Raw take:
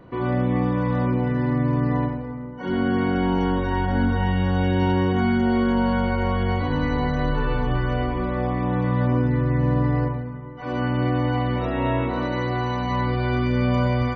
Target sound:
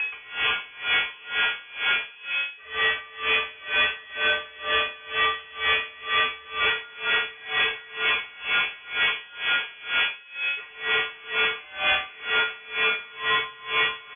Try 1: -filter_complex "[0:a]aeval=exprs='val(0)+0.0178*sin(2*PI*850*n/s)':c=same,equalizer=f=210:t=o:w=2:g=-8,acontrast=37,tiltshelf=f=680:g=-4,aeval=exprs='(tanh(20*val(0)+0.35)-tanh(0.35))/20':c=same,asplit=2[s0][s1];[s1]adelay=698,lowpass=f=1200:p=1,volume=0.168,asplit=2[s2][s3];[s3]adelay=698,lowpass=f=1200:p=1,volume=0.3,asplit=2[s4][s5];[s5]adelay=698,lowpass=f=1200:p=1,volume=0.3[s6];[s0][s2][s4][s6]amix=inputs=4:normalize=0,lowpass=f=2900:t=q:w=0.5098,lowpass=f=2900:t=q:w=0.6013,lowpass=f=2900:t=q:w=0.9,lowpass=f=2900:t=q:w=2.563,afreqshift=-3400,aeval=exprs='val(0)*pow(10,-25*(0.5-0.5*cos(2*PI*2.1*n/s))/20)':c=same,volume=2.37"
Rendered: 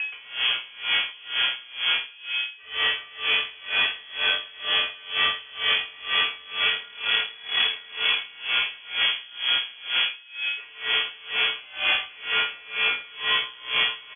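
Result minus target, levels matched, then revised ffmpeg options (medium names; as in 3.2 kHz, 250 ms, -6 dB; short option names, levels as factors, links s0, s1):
500 Hz band -7.0 dB
-filter_complex "[0:a]aeval=exprs='val(0)+0.0178*sin(2*PI*850*n/s)':c=same,equalizer=f=210:t=o:w=2:g=-8,acontrast=37,tiltshelf=f=680:g=-15.5,aeval=exprs='(tanh(20*val(0)+0.35)-tanh(0.35))/20':c=same,asplit=2[s0][s1];[s1]adelay=698,lowpass=f=1200:p=1,volume=0.168,asplit=2[s2][s3];[s3]adelay=698,lowpass=f=1200:p=1,volume=0.3,asplit=2[s4][s5];[s5]adelay=698,lowpass=f=1200:p=1,volume=0.3[s6];[s0][s2][s4][s6]amix=inputs=4:normalize=0,lowpass=f=2900:t=q:w=0.5098,lowpass=f=2900:t=q:w=0.6013,lowpass=f=2900:t=q:w=0.9,lowpass=f=2900:t=q:w=2.563,afreqshift=-3400,aeval=exprs='val(0)*pow(10,-25*(0.5-0.5*cos(2*PI*2.1*n/s))/20)':c=same,volume=2.37"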